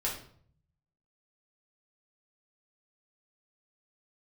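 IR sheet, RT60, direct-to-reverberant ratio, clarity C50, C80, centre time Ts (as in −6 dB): 0.55 s, −5.0 dB, 5.5 dB, 10.0 dB, 30 ms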